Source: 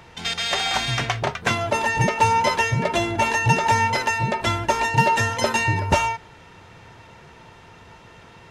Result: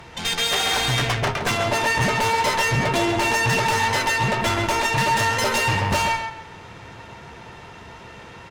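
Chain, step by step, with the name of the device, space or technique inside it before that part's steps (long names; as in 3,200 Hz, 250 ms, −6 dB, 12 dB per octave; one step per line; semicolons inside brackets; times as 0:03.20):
rockabilly slapback (tube saturation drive 27 dB, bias 0.7; tape delay 134 ms, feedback 29%, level −4 dB, low-pass 4,000 Hz)
double-tracking delay 15 ms −11.5 dB
level +8 dB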